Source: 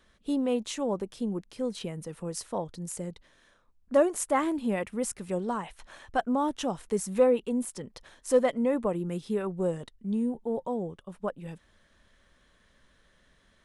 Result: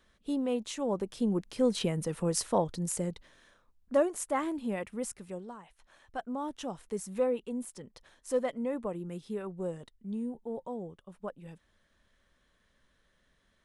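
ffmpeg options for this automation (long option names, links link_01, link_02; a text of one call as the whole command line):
ffmpeg -i in.wav -af "volume=14.5dB,afade=type=in:start_time=0.77:duration=0.97:silence=0.354813,afade=type=out:start_time=2.45:duration=1.65:silence=0.298538,afade=type=out:start_time=5.04:duration=0.53:silence=0.281838,afade=type=in:start_time=5.57:duration=1.16:silence=0.354813" out.wav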